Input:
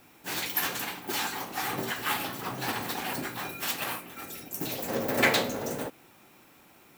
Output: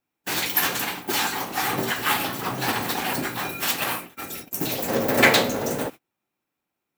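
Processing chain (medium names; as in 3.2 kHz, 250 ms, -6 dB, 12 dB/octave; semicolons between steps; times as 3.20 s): gate -42 dBFS, range -33 dB; trim +7 dB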